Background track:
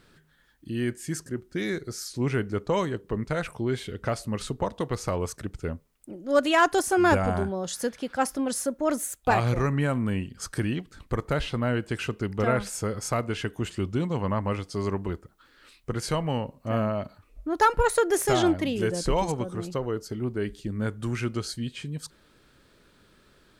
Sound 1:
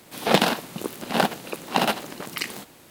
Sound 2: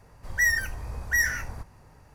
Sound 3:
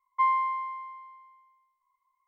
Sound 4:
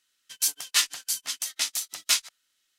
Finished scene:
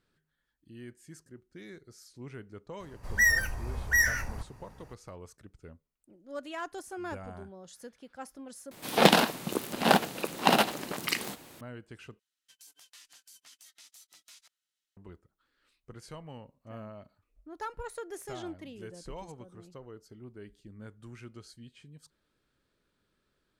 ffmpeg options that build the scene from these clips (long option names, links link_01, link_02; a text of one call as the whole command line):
ffmpeg -i bed.wav -i cue0.wav -i cue1.wav -i cue2.wav -i cue3.wav -filter_complex "[0:a]volume=-18dB[link_01];[4:a]acompressor=threshold=-32dB:ratio=10:attack=0.43:release=47:knee=1:detection=peak[link_02];[link_01]asplit=3[link_03][link_04][link_05];[link_03]atrim=end=8.714[link_06];[1:a]atrim=end=2.9,asetpts=PTS-STARTPTS,volume=-1dB[link_07];[link_04]atrim=start=11.606:end=12.194[link_08];[link_02]atrim=end=2.78,asetpts=PTS-STARTPTS,volume=-16dB[link_09];[link_05]atrim=start=14.966[link_10];[2:a]atrim=end=2.14,asetpts=PTS-STARTPTS,volume=-0.5dB,afade=type=in:duration=0.004:curve=hsin,afade=type=out:start_time=2.136:duration=0.004:curve=hsin,adelay=2800[link_11];[link_06][link_07]acrossfade=duration=0.004:curve1=hsin:curve2=hsin[link_12];[link_12][link_08]acrossfade=duration=0.004:curve1=hsin:curve2=hsin[link_13];[link_13][link_09]acrossfade=duration=0.004:curve1=hsin:curve2=hsin[link_14];[link_14][link_10]acrossfade=duration=0.004:curve1=hsin:curve2=hsin[link_15];[link_15][link_11]amix=inputs=2:normalize=0" out.wav